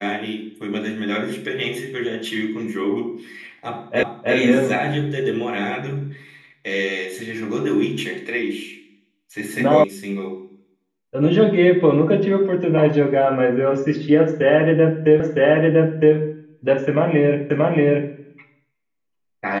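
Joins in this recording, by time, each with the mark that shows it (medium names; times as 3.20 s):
4.03 s: repeat of the last 0.32 s
9.84 s: sound stops dead
15.20 s: repeat of the last 0.96 s
17.50 s: repeat of the last 0.63 s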